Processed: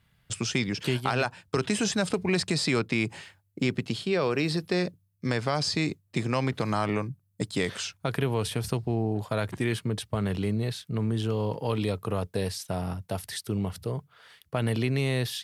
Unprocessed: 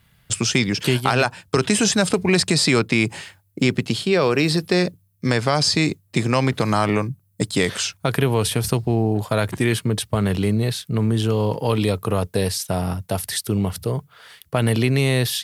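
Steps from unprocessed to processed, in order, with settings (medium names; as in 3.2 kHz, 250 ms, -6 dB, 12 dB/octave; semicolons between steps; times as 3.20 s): treble shelf 8.3 kHz -8 dB; trim -8 dB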